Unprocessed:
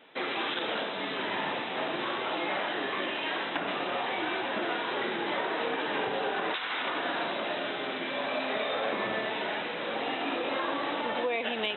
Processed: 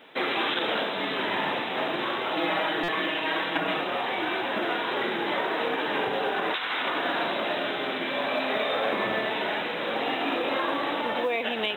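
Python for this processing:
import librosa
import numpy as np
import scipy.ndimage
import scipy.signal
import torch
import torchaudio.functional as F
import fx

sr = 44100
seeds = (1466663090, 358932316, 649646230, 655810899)

y = fx.comb(x, sr, ms=6.3, depth=0.85, at=(2.36, 3.81))
y = fx.rider(y, sr, range_db=10, speed_s=2.0)
y = fx.quant_companded(y, sr, bits=8)
y = fx.buffer_glitch(y, sr, at_s=(2.83,), block=256, repeats=8)
y = y * librosa.db_to_amplitude(3.5)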